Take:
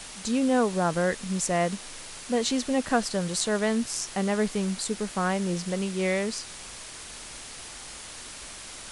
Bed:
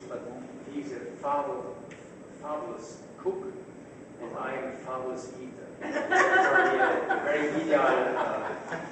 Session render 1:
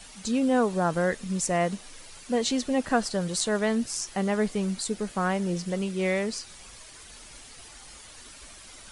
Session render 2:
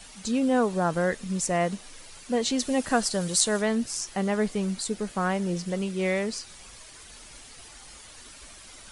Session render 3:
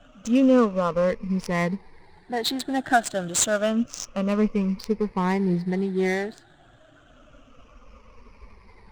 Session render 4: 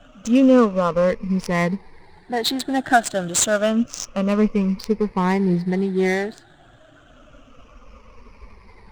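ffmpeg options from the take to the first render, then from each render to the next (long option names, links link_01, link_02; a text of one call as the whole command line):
ffmpeg -i in.wav -af "afftdn=noise_reduction=9:noise_floor=-42" out.wav
ffmpeg -i in.wav -filter_complex "[0:a]asettb=1/sr,asplit=3[link_01][link_02][link_03];[link_01]atrim=end=2.594[link_04];[link_02]atrim=start=2.59:end=3.62,asetpts=PTS-STARTPTS,afade=type=in:duration=0.004:curve=qsin,afade=type=out:start_time=1.026:duration=0.004:curve=qsin,highshelf=frequency=5100:gain=9.5[link_05];[link_03]atrim=start=3.616[link_06];[link_04][link_05]acrossfade=duration=0.004:curve1=hsin:curve2=qsin[link_07];[link_07][link_06]acrossfade=duration=0.004:curve1=qsin:curve2=hsin" out.wav
ffmpeg -i in.wav -af "afftfilt=real='re*pow(10,16/40*sin(2*PI*(0.86*log(max(b,1)*sr/1024/100)/log(2)-(-0.28)*(pts-256)/sr)))':imag='im*pow(10,16/40*sin(2*PI*(0.86*log(max(b,1)*sr/1024/100)/log(2)-(-0.28)*(pts-256)/sr)))':win_size=1024:overlap=0.75,adynamicsmooth=sensitivity=3.5:basefreq=1100" out.wav
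ffmpeg -i in.wav -af "volume=4dB,alimiter=limit=-1dB:level=0:latency=1" out.wav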